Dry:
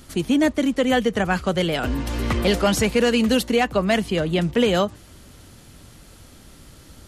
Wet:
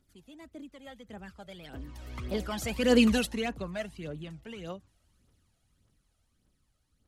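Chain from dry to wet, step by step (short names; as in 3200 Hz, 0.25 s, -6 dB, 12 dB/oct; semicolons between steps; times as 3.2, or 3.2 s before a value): Doppler pass-by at 3.04, 19 m/s, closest 3 m; phaser 1.7 Hz, delay 1.6 ms, feedback 55%; gain -5 dB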